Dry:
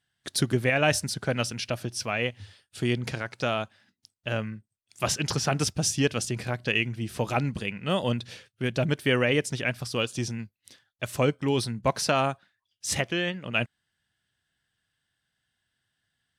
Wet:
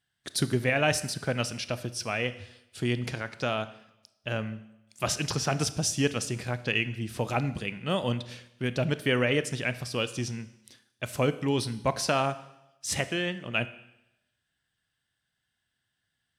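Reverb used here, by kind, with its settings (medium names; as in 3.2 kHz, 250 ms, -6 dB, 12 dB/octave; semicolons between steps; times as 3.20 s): Schroeder reverb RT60 0.88 s, combs from 25 ms, DRR 13.5 dB; trim -2 dB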